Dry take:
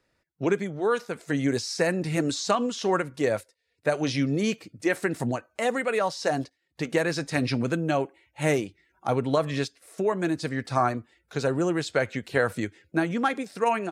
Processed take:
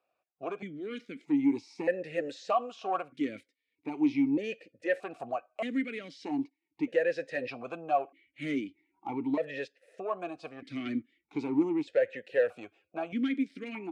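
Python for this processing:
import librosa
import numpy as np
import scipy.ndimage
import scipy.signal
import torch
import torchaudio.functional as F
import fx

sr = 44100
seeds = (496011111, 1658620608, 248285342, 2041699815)

y = fx.leveller(x, sr, passes=1, at=(10.85, 11.63))
y = 10.0 ** (-17.5 / 20.0) * np.tanh(y / 10.0 ** (-17.5 / 20.0))
y = fx.vowel_held(y, sr, hz=1.6)
y = y * librosa.db_to_amplitude(5.5)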